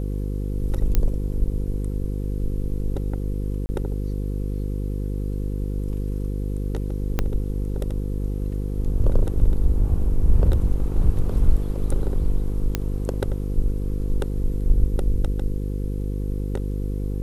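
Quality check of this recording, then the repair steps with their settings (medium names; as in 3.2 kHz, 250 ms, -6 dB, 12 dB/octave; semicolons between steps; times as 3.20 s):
buzz 50 Hz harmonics 10 -26 dBFS
0.95 s: pop -8 dBFS
3.66–3.69 s: dropout 30 ms
7.19 s: pop -8 dBFS
12.75 s: pop -8 dBFS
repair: de-click; de-hum 50 Hz, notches 10; interpolate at 3.66 s, 30 ms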